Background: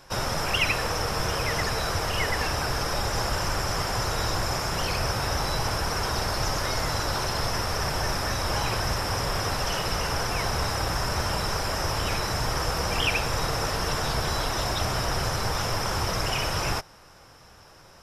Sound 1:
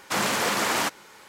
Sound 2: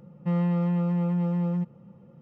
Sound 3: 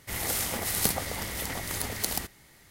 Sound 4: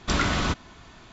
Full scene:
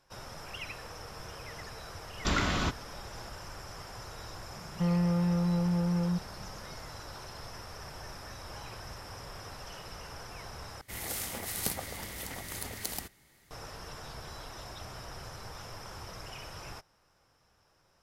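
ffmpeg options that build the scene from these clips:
-filter_complex "[0:a]volume=0.133,asplit=2[s0][s1];[s0]atrim=end=10.814[s2];[3:a]atrim=end=2.7,asetpts=PTS-STARTPTS,volume=0.447[s3];[s1]atrim=start=13.506[s4];[4:a]atrim=end=1.12,asetpts=PTS-STARTPTS,volume=0.562,afade=t=in:d=0.004:c=hsin,afade=t=out:st=1.116:d=0.004:c=hsin,adelay=2170[s5];[2:a]atrim=end=2.21,asetpts=PTS-STARTPTS,volume=0.708,afade=t=in:d=0.004:c=hsin,afade=t=out:st=2.206:d=0.004:c=hsin,adelay=4540[s6];[s2][s3]acrossfade=d=0.004:c1=hsin:c2=hsin[s7];[s7][s4]acrossfade=d=0.004:c1=hsin:c2=hsin[s8];[s8][s5][s6]amix=inputs=3:normalize=0"

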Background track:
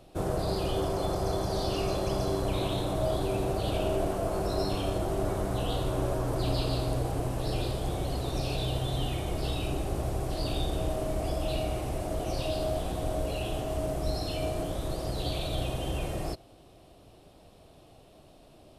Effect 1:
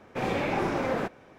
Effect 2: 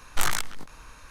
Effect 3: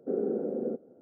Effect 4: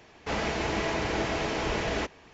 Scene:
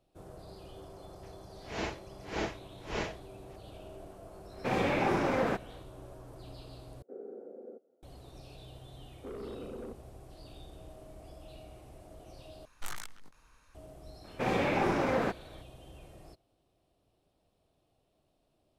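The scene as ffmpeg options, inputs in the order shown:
-filter_complex "[1:a]asplit=2[s0][s1];[3:a]asplit=2[s2][s3];[0:a]volume=0.106[s4];[4:a]aeval=exprs='val(0)*pow(10,-38*(0.5-0.5*cos(2*PI*1.7*n/s))/20)':c=same[s5];[s2]highpass=410[s6];[s3]asoftclip=type=tanh:threshold=0.0266[s7];[s4]asplit=3[s8][s9][s10];[s8]atrim=end=7.024[s11];[s6]atrim=end=1.01,asetpts=PTS-STARTPTS,volume=0.251[s12];[s9]atrim=start=8.026:end=12.654[s13];[2:a]atrim=end=1.1,asetpts=PTS-STARTPTS,volume=0.158[s14];[s10]atrim=start=13.746[s15];[s5]atrim=end=2.33,asetpts=PTS-STARTPTS,volume=0.668,afade=t=in:d=0.004:c=hsin,afade=t=out:st=2.326:d=0.004:c=hsin,adelay=1230[s16];[s0]atrim=end=1.38,asetpts=PTS-STARTPTS,volume=0.891,afade=t=in:d=0.1,afade=t=out:st=1.28:d=0.1,adelay=198009S[s17];[s7]atrim=end=1.01,asetpts=PTS-STARTPTS,volume=0.422,afade=t=in:d=0.004:c=hsin,afade=t=out:st=1.006:d=0.004:c=hsin,adelay=9170[s18];[s1]atrim=end=1.38,asetpts=PTS-STARTPTS,volume=0.891,afade=t=in:d=0.004:c=hsin,afade=t=out:st=1.376:d=0.004:c=hsin,adelay=14240[s19];[s11][s12]acrossfade=d=0.004:c1=hsin:c2=hsin[s20];[s20][s13]acrossfade=d=0.004:c1=hsin:c2=hsin[s21];[s21][s14]acrossfade=d=0.004:c1=hsin:c2=hsin[s22];[s22][s15]acrossfade=d=0.004:c1=hsin:c2=hsin[s23];[s23][s16][s17][s18][s19]amix=inputs=5:normalize=0"

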